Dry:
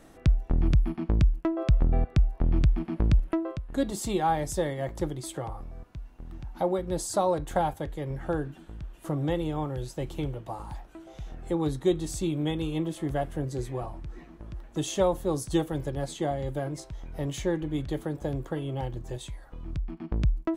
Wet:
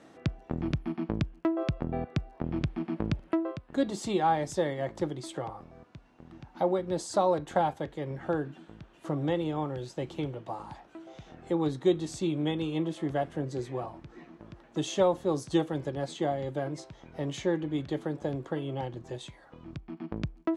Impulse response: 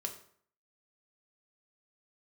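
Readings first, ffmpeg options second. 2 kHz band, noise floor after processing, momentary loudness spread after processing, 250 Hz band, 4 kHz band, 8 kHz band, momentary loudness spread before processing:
0.0 dB, -57 dBFS, 18 LU, -0.5 dB, -0.5 dB, -6.0 dB, 17 LU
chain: -af "highpass=150,lowpass=5900"

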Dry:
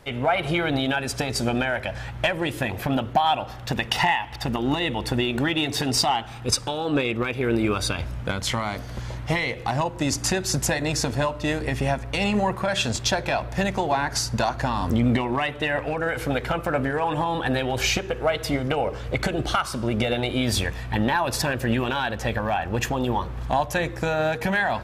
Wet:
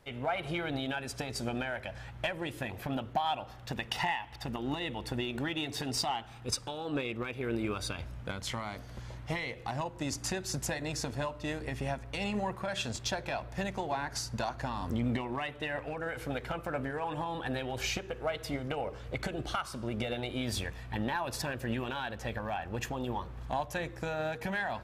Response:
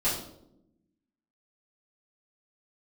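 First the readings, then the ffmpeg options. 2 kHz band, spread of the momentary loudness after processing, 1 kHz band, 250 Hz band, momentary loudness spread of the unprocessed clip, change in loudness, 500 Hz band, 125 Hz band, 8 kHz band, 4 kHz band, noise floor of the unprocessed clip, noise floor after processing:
-11.0 dB, 5 LU, -11.0 dB, -11.0 dB, 4 LU, -11.0 dB, -11.0 dB, -11.0 dB, -11.0 dB, -11.0 dB, -36 dBFS, -47 dBFS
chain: -af "asoftclip=type=tanh:threshold=0.316,aeval=exprs='0.282*(cos(1*acos(clip(val(0)/0.282,-1,1)))-cos(1*PI/2))+0.0316*(cos(3*acos(clip(val(0)/0.282,-1,1)))-cos(3*PI/2))':c=same,volume=0.398"

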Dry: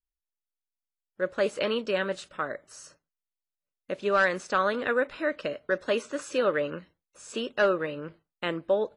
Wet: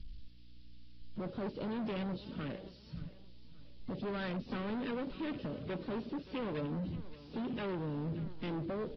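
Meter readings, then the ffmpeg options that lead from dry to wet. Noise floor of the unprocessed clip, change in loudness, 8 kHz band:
under -85 dBFS, -11.5 dB, under -30 dB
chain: -filter_complex "[0:a]aeval=exprs='val(0)+0.5*0.0355*sgn(val(0))':c=same,afwtdn=0.0355,firequalizer=gain_entry='entry(160,0);entry(750,-29);entry(3100,-8)':delay=0.05:min_phase=1,acrossover=split=140|3000[s0][s1][s2];[s0]acompressor=threshold=0.00224:ratio=2.5[s3];[s3][s1][s2]amix=inputs=3:normalize=0,aeval=exprs='val(0)+0.000631*(sin(2*PI*60*n/s)+sin(2*PI*2*60*n/s)/2+sin(2*PI*3*60*n/s)/3+sin(2*PI*4*60*n/s)/4+sin(2*PI*5*60*n/s)/5)':c=same,asoftclip=type=hard:threshold=0.0106,aecho=1:1:576|1152|1728:0.133|0.0427|0.0137,aresample=11025,aresample=44100,volume=1.68" -ar 32000 -c:a aac -b:a 24k

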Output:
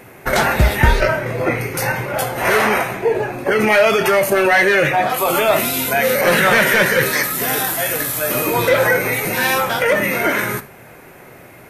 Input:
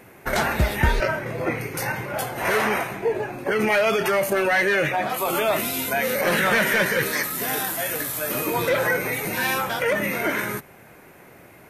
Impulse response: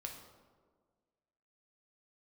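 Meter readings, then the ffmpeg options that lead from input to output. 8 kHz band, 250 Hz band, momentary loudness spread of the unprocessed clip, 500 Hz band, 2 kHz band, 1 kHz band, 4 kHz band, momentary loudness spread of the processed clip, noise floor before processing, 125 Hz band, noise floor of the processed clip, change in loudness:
+6.5 dB, +5.5 dB, 8 LU, +7.0 dB, +6.5 dB, +7.0 dB, +6.5 dB, 8 LU, -48 dBFS, +7.0 dB, -41 dBFS, +7.0 dB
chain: -filter_complex "[0:a]asplit=2[s0][s1];[1:a]atrim=start_sample=2205,atrim=end_sample=3969[s2];[s1][s2]afir=irnorm=-1:irlink=0,volume=1.33[s3];[s0][s3]amix=inputs=2:normalize=0,volume=1.19"

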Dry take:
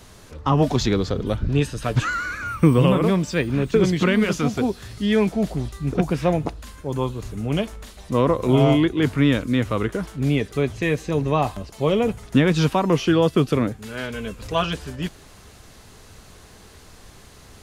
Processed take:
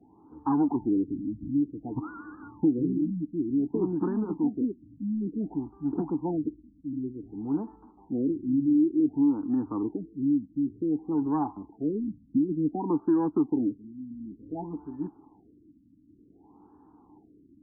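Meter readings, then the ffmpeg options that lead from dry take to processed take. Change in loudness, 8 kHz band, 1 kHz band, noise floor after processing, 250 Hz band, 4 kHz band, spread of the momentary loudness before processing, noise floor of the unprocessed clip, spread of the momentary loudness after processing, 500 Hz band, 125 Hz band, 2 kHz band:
-7.5 dB, under -40 dB, -11.5 dB, -60 dBFS, -4.0 dB, under -40 dB, 11 LU, -47 dBFS, 13 LU, -13.5 dB, -17.0 dB, under -25 dB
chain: -filter_complex "[0:a]asplit=3[s0][s1][s2];[s0]bandpass=f=300:t=q:w=8,volume=1[s3];[s1]bandpass=f=870:t=q:w=8,volume=0.501[s4];[s2]bandpass=f=2240:t=q:w=8,volume=0.355[s5];[s3][s4][s5]amix=inputs=3:normalize=0,acrossover=split=410|3000[s6][s7][s8];[s6]acompressor=threshold=0.0398:ratio=6[s9];[s9][s7][s8]amix=inputs=3:normalize=0,asplit=2[s10][s11];[s11]asoftclip=type=tanh:threshold=0.0282,volume=0.531[s12];[s10][s12]amix=inputs=2:normalize=0,afftfilt=real='re*lt(b*sr/1024,300*pow(1800/300,0.5+0.5*sin(2*PI*0.55*pts/sr)))':imag='im*lt(b*sr/1024,300*pow(1800/300,0.5+0.5*sin(2*PI*0.55*pts/sr)))':win_size=1024:overlap=0.75,volume=1.33"

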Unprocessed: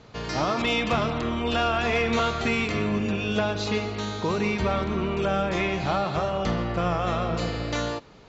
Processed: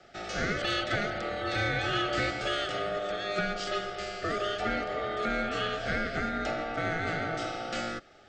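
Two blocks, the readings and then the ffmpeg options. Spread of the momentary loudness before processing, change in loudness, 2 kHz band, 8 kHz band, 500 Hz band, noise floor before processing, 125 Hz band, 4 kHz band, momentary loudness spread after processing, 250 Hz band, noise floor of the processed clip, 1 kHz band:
5 LU, -5.5 dB, -1.5 dB, no reading, -6.0 dB, -48 dBFS, -9.5 dB, -2.5 dB, 5 LU, -9.5 dB, -55 dBFS, -5.0 dB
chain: -af "aeval=exprs='val(0)*sin(2*PI*840*n/s)':c=same,afreqshift=-22,asuperstop=centerf=1000:order=12:qfactor=3.4,volume=0.794"

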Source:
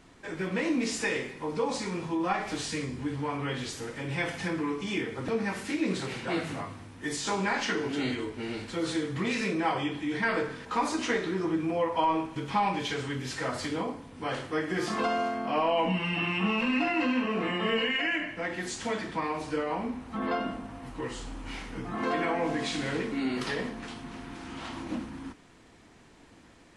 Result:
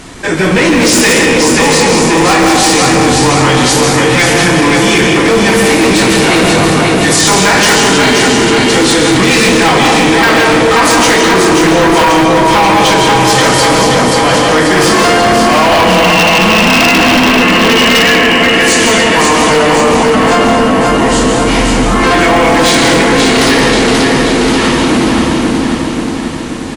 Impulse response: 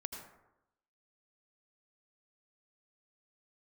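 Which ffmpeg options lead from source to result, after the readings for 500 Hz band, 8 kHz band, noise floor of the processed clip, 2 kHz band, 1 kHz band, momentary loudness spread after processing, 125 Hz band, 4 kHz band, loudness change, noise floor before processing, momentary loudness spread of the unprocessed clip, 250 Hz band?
+23.5 dB, +30.0 dB, -13 dBFS, +24.0 dB, +23.0 dB, 3 LU, +22.5 dB, +27.0 dB, +23.5 dB, -55 dBFS, 11 LU, +22.0 dB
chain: -filter_complex "[0:a]aecho=1:1:533|1066|1599|2132|2665|3198|3731|4264:0.562|0.321|0.183|0.104|0.0594|0.0338|0.0193|0.011[s0];[1:a]atrim=start_sample=2205,asetrate=24696,aresample=44100[s1];[s0][s1]afir=irnorm=-1:irlink=0,aeval=exprs='0.106*(abs(mod(val(0)/0.106+3,4)-2)-1)':c=same,highshelf=f=5300:g=8.5,apsyclip=28.2,volume=0.631"

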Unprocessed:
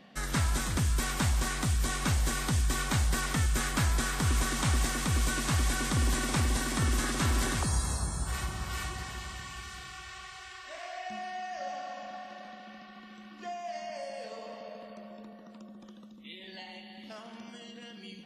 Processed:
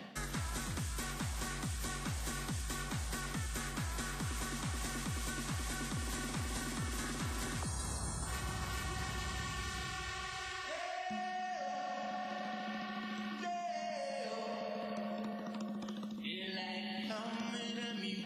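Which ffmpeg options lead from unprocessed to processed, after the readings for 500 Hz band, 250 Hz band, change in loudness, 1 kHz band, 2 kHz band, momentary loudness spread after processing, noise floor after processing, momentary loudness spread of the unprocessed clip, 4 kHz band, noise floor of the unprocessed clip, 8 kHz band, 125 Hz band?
-3.0 dB, -4.5 dB, -9.0 dB, -4.5 dB, -6.0 dB, 2 LU, -43 dBFS, 18 LU, -5.5 dB, -50 dBFS, -8.0 dB, -10.5 dB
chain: -filter_complex "[0:a]areverse,acompressor=threshold=0.01:ratio=6,areverse,highpass=65,acrossover=split=240|530[s0][s1][s2];[s0]acompressor=threshold=0.00398:ratio=4[s3];[s1]acompressor=threshold=0.001:ratio=4[s4];[s2]acompressor=threshold=0.00316:ratio=4[s5];[s3][s4][s5]amix=inputs=3:normalize=0,volume=2.82"

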